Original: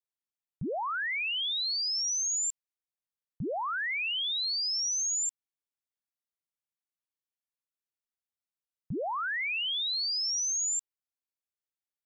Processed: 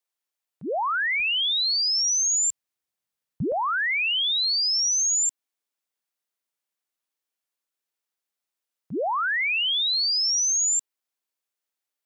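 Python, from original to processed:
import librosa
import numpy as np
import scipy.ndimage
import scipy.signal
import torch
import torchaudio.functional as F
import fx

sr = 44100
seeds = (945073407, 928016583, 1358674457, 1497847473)

y = fx.highpass(x, sr, hz=fx.steps((0.0, 380.0), (1.2, 58.0), (3.52, 270.0)), slope=12)
y = y * 10.0 ** (7.5 / 20.0)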